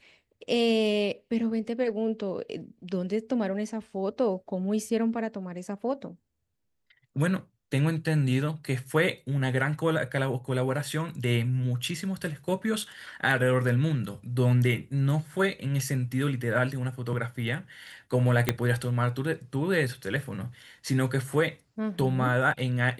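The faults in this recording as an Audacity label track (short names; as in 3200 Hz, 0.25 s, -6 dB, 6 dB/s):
18.490000	18.490000	pop -7 dBFS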